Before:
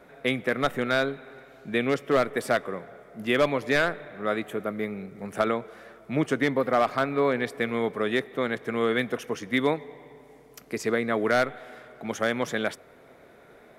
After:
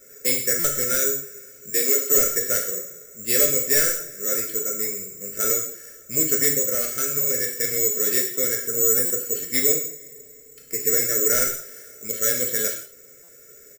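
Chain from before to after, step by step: Chebyshev band-stop 610–1400 Hz, order 3; comb 2.3 ms, depth 52%; 6.49–7.64 compressor, threshold -23 dBFS, peak gain reduction 5 dB; careless resampling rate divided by 6×, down filtered, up zero stuff; 1.7–2.11 steep high-pass 240 Hz 36 dB/oct; 8.67–9.24 band shelf 3100 Hz -11.5 dB; non-linear reverb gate 0.21 s falling, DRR 0 dB; stuck buffer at 0.59/9.05/13.23, samples 256, times 8; gain -5.5 dB

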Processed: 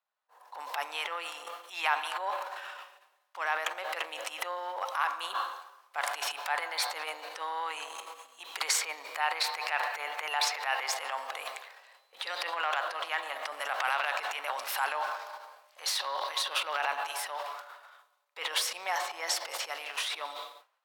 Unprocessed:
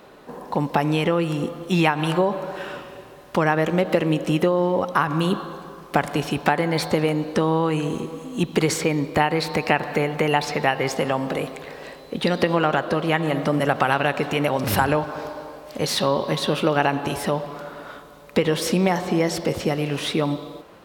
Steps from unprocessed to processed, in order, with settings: expander -29 dBFS; transient shaper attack -10 dB, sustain +10 dB; HPF 790 Hz 24 dB/oct; gain -6.5 dB

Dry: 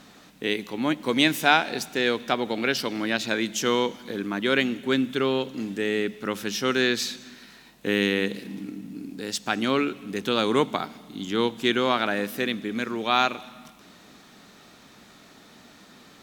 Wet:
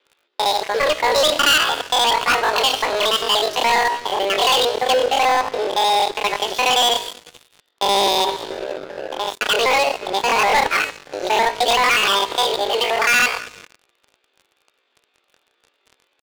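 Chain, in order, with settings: local time reversal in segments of 59 ms; Chebyshev band-pass 140–1900 Hz, order 3; low shelf 390 Hz -11 dB; de-hum 164.3 Hz, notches 29; pitch shift +11.5 st; sample leveller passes 5

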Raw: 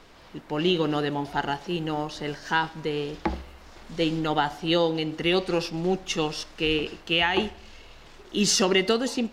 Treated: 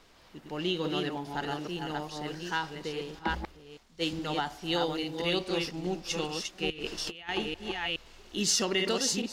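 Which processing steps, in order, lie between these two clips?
reverse delay 0.419 s, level -3.5 dB; 4.72–5.22 high shelf 8900 Hz +6.5 dB; 6.7–7.29 negative-ratio compressor -30 dBFS, ratio -0.5; high shelf 3900 Hz +7 dB; 3.19–4.13 three-band expander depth 100%; gain -8.5 dB

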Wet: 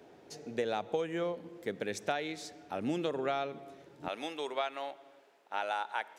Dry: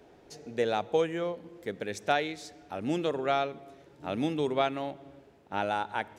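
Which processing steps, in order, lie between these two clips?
HPF 110 Hz 12 dB/oct, from 4.08 s 670 Hz; compressor 6:1, threshold -29 dBFS, peak gain reduction 8.5 dB

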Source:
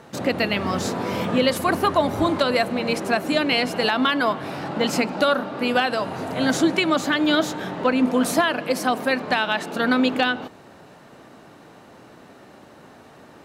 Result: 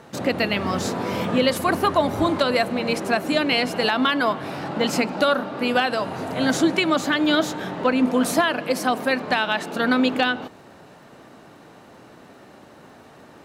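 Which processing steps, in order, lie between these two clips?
crackle 15/s -47 dBFS

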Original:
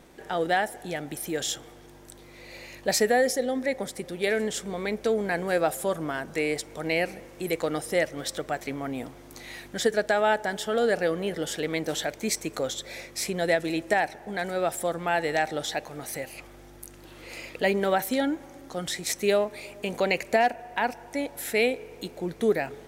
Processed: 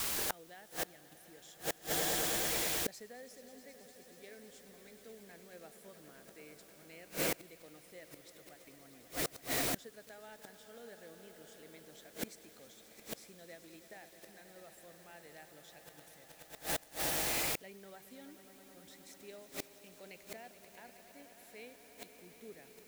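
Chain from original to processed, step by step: swelling echo 0.107 s, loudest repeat 5, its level -14 dB; dynamic EQ 890 Hz, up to -5 dB, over -36 dBFS, Q 0.77; requantised 6-bit, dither triangular; flipped gate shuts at -21 dBFS, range -27 dB

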